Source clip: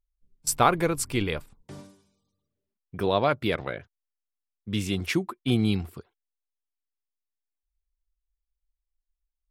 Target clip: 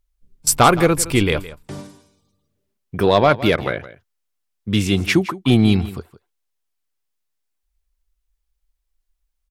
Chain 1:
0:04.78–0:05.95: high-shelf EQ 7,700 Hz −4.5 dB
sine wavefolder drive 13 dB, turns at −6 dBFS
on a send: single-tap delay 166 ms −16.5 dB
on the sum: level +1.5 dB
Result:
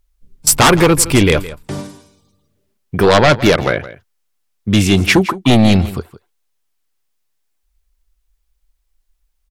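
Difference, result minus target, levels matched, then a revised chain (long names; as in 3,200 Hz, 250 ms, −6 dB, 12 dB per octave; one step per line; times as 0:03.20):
sine wavefolder: distortion +13 dB
0:04.78–0:05.95: high-shelf EQ 7,700 Hz −4.5 dB
sine wavefolder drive 5 dB, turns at −6 dBFS
on a send: single-tap delay 166 ms −16.5 dB
on the sum: level +1.5 dB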